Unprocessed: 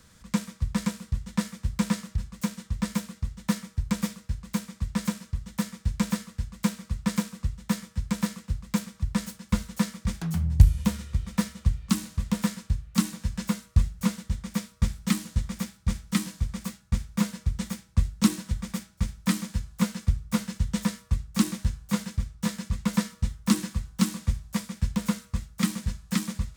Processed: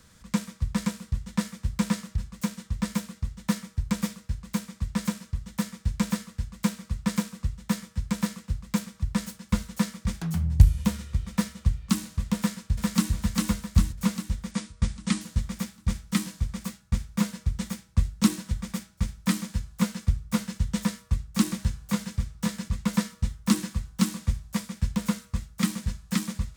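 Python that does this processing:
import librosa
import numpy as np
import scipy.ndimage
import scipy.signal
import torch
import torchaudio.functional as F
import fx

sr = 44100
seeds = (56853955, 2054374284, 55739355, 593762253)

y = fx.echo_throw(x, sr, start_s=12.37, length_s=0.75, ms=400, feedback_pct=55, wet_db=-1.0)
y = fx.ellip_lowpass(y, sr, hz=9400.0, order=4, stop_db=50, at=(14.51, 15.21))
y = fx.band_squash(y, sr, depth_pct=40, at=(21.51, 22.68))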